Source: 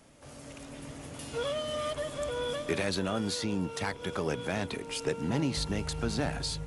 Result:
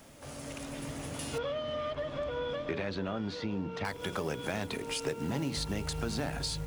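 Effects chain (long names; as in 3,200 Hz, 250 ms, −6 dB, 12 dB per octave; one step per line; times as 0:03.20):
mains-hum notches 60/120/180/240/300/360/420/480 Hz
downward compressor 2.5 to 1, threshold −38 dBFS, peak gain reduction 8.5 dB
log-companded quantiser 6 bits
0:01.38–0:03.85: high-frequency loss of the air 230 metres
level +4.5 dB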